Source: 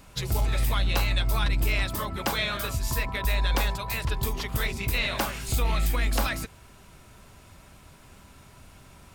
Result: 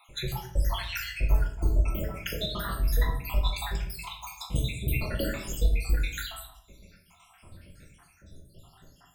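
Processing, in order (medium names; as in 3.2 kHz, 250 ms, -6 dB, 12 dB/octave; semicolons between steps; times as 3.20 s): random holes in the spectrogram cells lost 81%; 1.20–1.81 s: FFT filter 770 Hz 0 dB, 3.2 kHz -15 dB, 7.5 kHz -5 dB; simulated room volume 130 m³, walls mixed, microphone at 0.84 m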